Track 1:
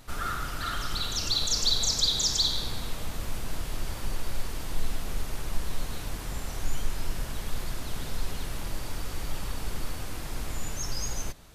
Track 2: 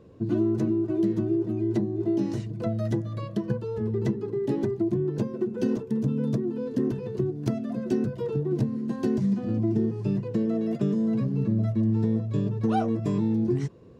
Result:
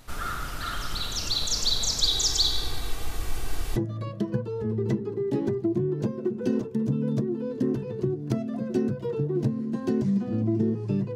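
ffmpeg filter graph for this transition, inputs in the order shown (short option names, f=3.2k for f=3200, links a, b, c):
-filter_complex "[0:a]asettb=1/sr,asplit=3[a][b][c];[a]atrim=end=2.024[d];[b]atrim=start=2.02:end=3.76,asetpts=PTS-STARTPTS,afade=t=in:d=0.004:c=qsin,afade=t=out:st=1.736:d=0.004:c=qsin,aecho=1:1:2.6:0.63,atrim=end_sample=76734[e];[c]atrim=start=3.756[f];[d][e]acrossfade=d=0.004:c1=hsin:c2=qsin[g];[g][f]acrossfade=d=0.004:c1=qsin:c2=hsin,apad=whole_dur=11.15,atrim=end=11.15,atrim=end=3.762[h];[1:a]atrim=start=2.918:end=10.31[i];[h][i]acrossfade=d=0.004:c1=hsin:c2=hsin"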